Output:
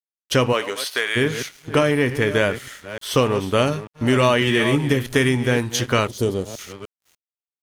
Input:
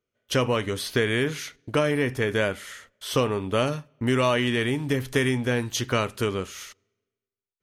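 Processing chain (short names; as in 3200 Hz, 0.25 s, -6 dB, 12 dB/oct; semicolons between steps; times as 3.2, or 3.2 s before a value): reverse delay 0.298 s, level -12 dB; 4.4–4.92 doubler 14 ms -4.5 dB; 6.07–6.59 band shelf 1700 Hz -15 dB; crossover distortion -47.5 dBFS; 0.52–1.15 HPF 350 Hz -> 960 Hz 12 dB/oct; gain +5.5 dB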